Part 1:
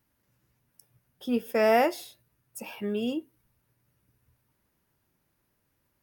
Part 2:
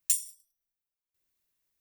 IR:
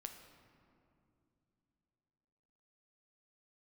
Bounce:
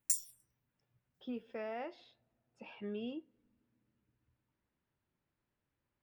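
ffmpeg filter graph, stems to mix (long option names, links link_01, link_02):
-filter_complex "[0:a]lowpass=frequency=4000:width=0.5412,lowpass=frequency=4000:width=1.3066,alimiter=limit=-23dB:level=0:latency=1:release=249,volume=-11dB,asplit=2[link_01][link_02];[link_02]volume=-22.5dB[link_03];[1:a]asplit=2[link_04][link_05];[link_05]afreqshift=-2.9[link_06];[link_04][link_06]amix=inputs=2:normalize=1,volume=-5dB[link_07];[2:a]atrim=start_sample=2205[link_08];[link_03][link_08]afir=irnorm=-1:irlink=0[link_09];[link_01][link_07][link_09]amix=inputs=3:normalize=0"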